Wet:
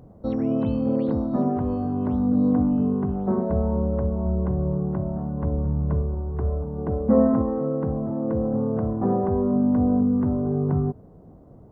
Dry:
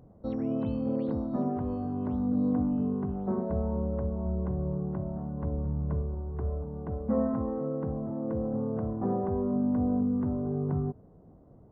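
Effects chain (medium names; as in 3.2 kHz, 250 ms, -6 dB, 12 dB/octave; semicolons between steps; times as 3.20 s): 6.78–7.42 s: peaking EQ 370 Hz +4.5 dB 1.6 oct; trim +7 dB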